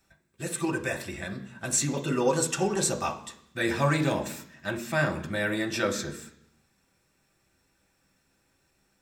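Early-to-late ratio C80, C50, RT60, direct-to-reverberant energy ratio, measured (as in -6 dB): 15.5 dB, 12.0 dB, 0.65 s, 2.0 dB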